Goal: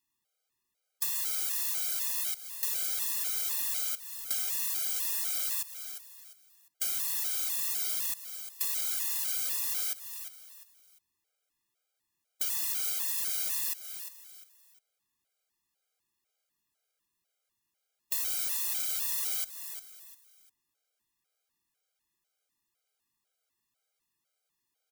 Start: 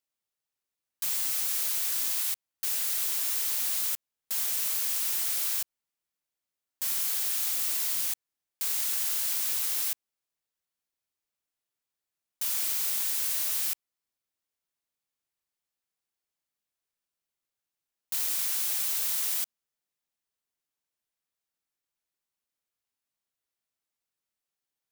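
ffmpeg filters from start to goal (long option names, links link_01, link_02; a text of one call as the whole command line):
ffmpeg -i in.wav -filter_complex "[0:a]asplit=4[link_01][link_02][link_03][link_04];[link_02]adelay=351,afreqshift=56,volume=-18dB[link_05];[link_03]adelay=702,afreqshift=112,volume=-28.2dB[link_06];[link_04]adelay=1053,afreqshift=168,volume=-38.3dB[link_07];[link_01][link_05][link_06][link_07]amix=inputs=4:normalize=0,acompressor=threshold=-35dB:ratio=6,afftfilt=real='re*gt(sin(2*PI*2*pts/sr)*(1-2*mod(floor(b*sr/1024/410),2)),0)':imag='im*gt(sin(2*PI*2*pts/sr)*(1-2*mod(floor(b*sr/1024/410),2)),0)':win_size=1024:overlap=0.75,volume=9dB" out.wav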